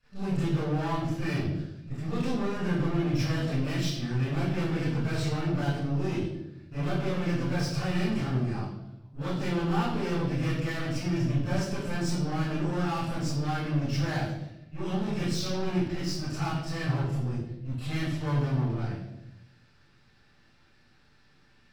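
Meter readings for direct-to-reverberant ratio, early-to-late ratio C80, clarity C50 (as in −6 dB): −13.5 dB, 4.0 dB, −1.5 dB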